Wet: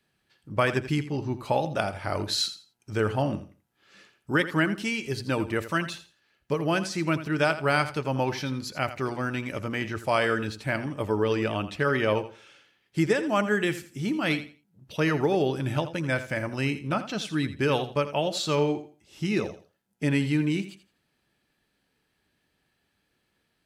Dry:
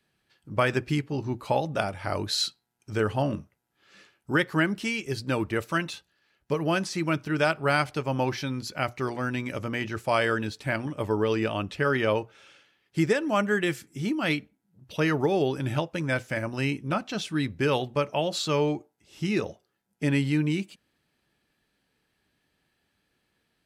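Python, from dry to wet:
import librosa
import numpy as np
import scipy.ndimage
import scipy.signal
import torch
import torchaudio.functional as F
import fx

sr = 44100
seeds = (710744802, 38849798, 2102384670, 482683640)

y = fx.echo_feedback(x, sr, ms=83, feedback_pct=23, wet_db=-13.0)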